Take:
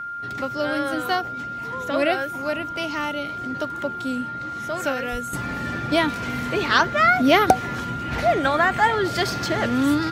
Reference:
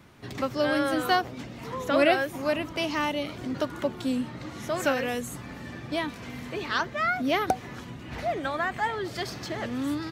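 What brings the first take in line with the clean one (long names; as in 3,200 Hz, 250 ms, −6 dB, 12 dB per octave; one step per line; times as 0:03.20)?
notch filter 1,400 Hz, Q 30
0:05.11–0:05.23: high-pass filter 140 Hz 24 dB per octave
0:05.33: level correction −9.5 dB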